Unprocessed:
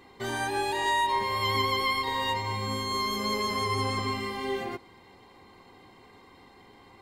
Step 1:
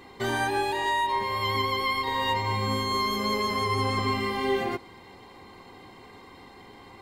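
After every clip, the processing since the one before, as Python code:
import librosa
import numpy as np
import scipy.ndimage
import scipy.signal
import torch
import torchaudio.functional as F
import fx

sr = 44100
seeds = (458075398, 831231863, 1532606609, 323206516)

y = fx.dynamic_eq(x, sr, hz=7700.0, q=0.73, threshold_db=-48.0, ratio=4.0, max_db=-5)
y = fx.rider(y, sr, range_db=3, speed_s=0.5)
y = y * librosa.db_to_amplitude(2.5)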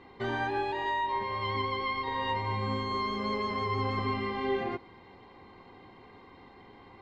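y = fx.air_absorb(x, sr, metres=220.0)
y = y * librosa.db_to_amplitude(-3.5)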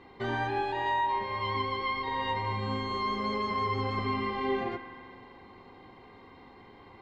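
y = fx.rev_spring(x, sr, rt60_s=2.3, pass_ms=(42,), chirp_ms=55, drr_db=9.5)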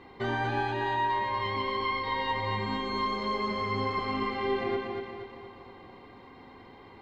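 y = fx.rider(x, sr, range_db=10, speed_s=0.5)
y = fx.echo_feedback(y, sr, ms=236, feedback_pct=49, wet_db=-4)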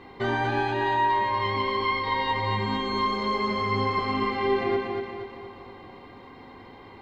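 y = fx.doubler(x, sr, ms=20.0, db=-13.0)
y = y * librosa.db_to_amplitude(4.0)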